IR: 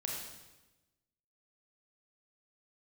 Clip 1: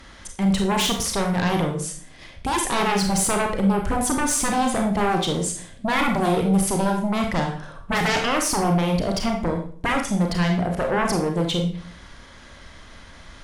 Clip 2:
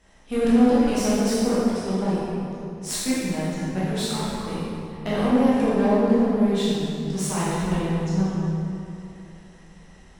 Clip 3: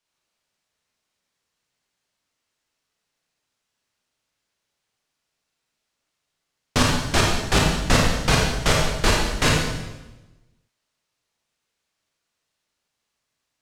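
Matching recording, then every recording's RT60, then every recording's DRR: 3; 0.45 s, 2.8 s, 1.1 s; 2.5 dB, -10.0 dB, -2.0 dB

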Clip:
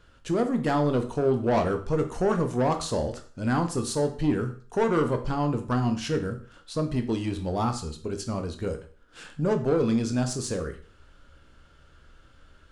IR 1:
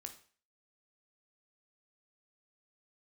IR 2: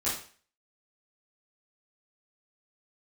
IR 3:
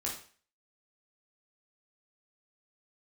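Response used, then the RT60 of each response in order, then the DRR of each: 1; 0.45 s, 0.45 s, 0.45 s; 5.5 dB, -10.5 dB, -3.5 dB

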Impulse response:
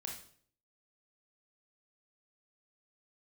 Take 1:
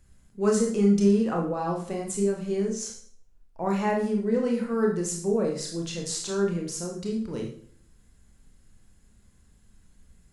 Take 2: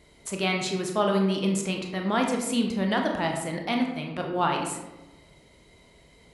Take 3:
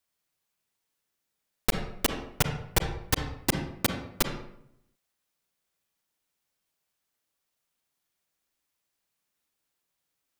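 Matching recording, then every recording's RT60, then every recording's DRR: 1; 0.55 s, 1.1 s, 0.75 s; -0.5 dB, 2.0 dB, 5.0 dB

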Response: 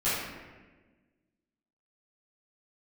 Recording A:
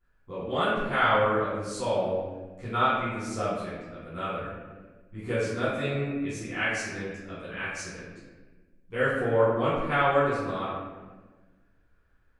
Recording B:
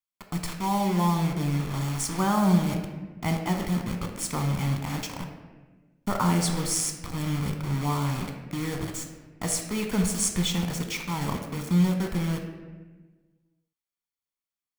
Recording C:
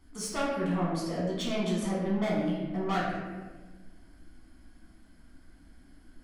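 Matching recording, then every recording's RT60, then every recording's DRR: A; 1.3 s, 1.3 s, 1.3 s; -14.0 dB, 3.0 dB, -6.0 dB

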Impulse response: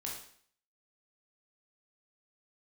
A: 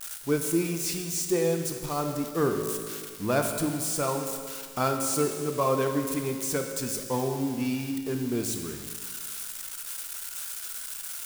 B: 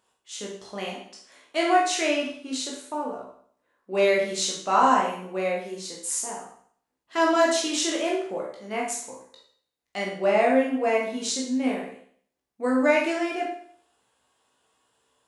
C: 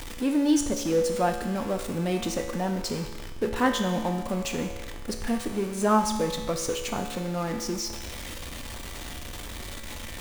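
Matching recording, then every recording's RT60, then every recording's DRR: B; 1.9 s, 0.55 s, 1.3 s; 4.0 dB, -3.0 dB, 3.5 dB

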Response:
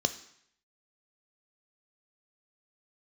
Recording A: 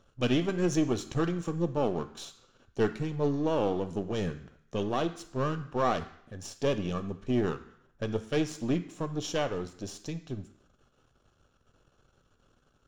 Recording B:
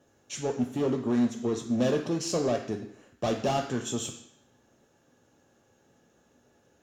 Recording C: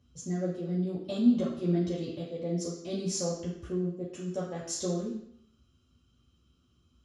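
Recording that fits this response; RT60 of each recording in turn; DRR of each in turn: A; 0.70 s, 0.70 s, 0.70 s; 10.0 dB, 2.5 dB, -7.0 dB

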